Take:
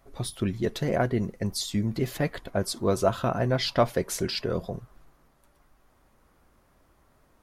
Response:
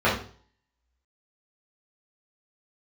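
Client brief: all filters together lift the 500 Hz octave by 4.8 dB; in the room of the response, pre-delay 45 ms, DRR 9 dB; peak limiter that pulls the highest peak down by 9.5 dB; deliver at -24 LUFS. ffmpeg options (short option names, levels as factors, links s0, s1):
-filter_complex "[0:a]equalizer=f=500:t=o:g=6,alimiter=limit=0.178:level=0:latency=1,asplit=2[s0][s1];[1:a]atrim=start_sample=2205,adelay=45[s2];[s1][s2]afir=irnorm=-1:irlink=0,volume=0.0422[s3];[s0][s3]amix=inputs=2:normalize=0,volume=1.33"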